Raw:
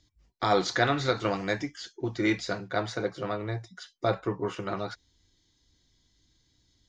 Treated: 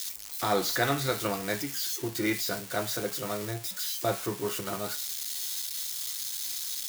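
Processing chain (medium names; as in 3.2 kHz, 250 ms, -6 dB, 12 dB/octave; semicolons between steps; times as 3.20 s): zero-crossing glitches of -23 dBFS; feedback comb 69 Hz, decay 0.29 s, harmonics all, mix 60%; trim +2 dB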